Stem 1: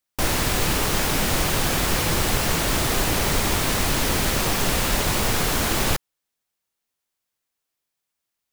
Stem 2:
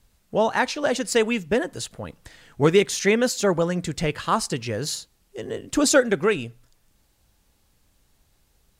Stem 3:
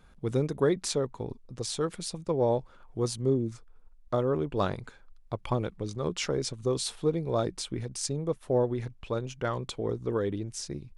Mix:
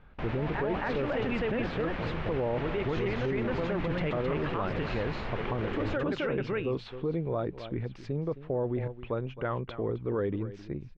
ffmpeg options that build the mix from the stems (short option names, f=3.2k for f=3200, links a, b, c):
-filter_complex "[0:a]volume=-12.5dB[a];[1:a]acompressor=threshold=-25dB:ratio=2.5,volume=2dB,asplit=2[b][c];[c]volume=-4.5dB[d];[2:a]volume=1dB,asplit=3[e][f][g];[f]volume=-16dB[h];[g]apad=whole_len=387768[i];[b][i]sidechaincompress=threshold=-35dB:ratio=8:attack=42:release=443[j];[d][h]amix=inputs=2:normalize=0,aecho=0:1:264:1[k];[a][j][e][k]amix=inputs=4:normalize=0,lowpass=f=2.7k:w=0.5412,lowpass=f=2.7k:w=1.3066,alimiter=limit=-22.5dB:level=0:latency=1:release=12"